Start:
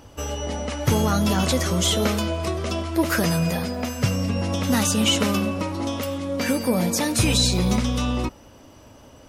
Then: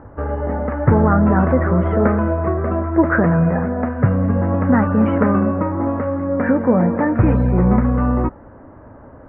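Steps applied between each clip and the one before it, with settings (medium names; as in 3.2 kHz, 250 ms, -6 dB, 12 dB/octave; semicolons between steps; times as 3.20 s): steep low-pass 1.8 kHz 48 dB/octave; trim +7 dB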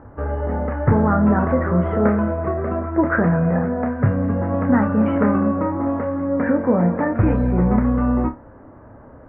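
flutter echo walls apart 4.9 m, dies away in 0.21 s; trim -3 dB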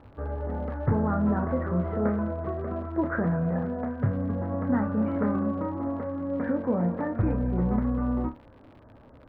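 crackle 98 per s -26 dBFS; distance through air 470 m; trim -8 dB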